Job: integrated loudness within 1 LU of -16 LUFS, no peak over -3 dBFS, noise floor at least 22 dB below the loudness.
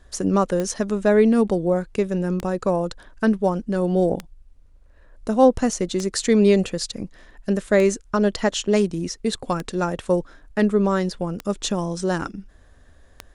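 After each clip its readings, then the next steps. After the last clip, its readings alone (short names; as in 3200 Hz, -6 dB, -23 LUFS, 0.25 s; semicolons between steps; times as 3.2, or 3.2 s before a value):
clicks 8; loudness -22.0 LUFS; peak -5.0 dBFS; loudness target -16.0 LUFS
-> de-click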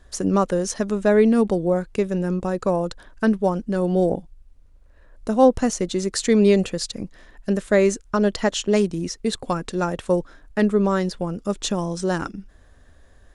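clicks 0; loudness -22.0 LUFS; peak -5.0 dBFS; loudness target -16.0 LUFS
-> gain +6 dB; limiter -3 dBFS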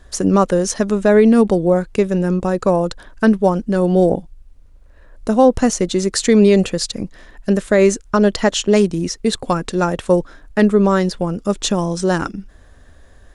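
loudness -16.5 LUFS; peak -3.0 dBFS; noise floor -45 dBFS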